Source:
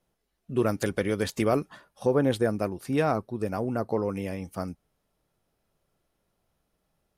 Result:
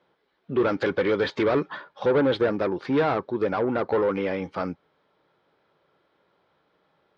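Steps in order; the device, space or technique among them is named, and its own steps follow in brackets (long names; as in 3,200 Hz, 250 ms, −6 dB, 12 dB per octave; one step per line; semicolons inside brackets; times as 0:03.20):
overdrive pedal into a guitar cabinet (mid-hump overdrive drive 24 dB, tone 3,200 Hz, clips at −11.5 dBFS; loudspeaker in its box 87–3,600 Hz, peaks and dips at 110 Hz −4 dB, 220 Hz −6 dB, 690 Hz −8 dB, 1,200 Hz −3 dB, 1,900 Hz −4 dB, 2,700 Hz −9 dB)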